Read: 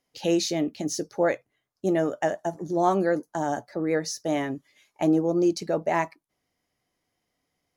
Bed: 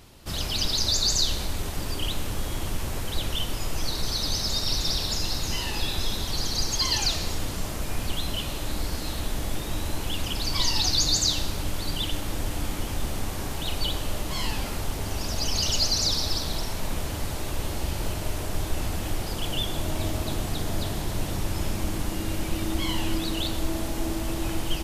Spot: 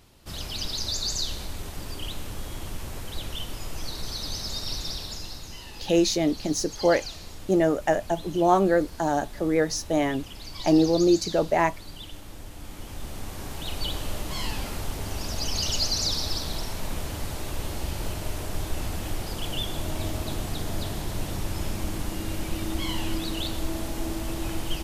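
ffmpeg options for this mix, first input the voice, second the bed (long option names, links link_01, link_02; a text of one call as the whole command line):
ffmpeg -i stem1.wav -i stem2.wav -filter_complex "[0:a]adelay=5650,volume=2.5dB[link_01];[1:a]volume=5dB,afade=type=out:start_time=4.72:duration=0.8:silence=0.446684,afade=type=in:start_time=12.56:duration=1.45:silence=0.298538[link_02];[link_01][link_02]amix=inputs=2:normalize=0" out.wav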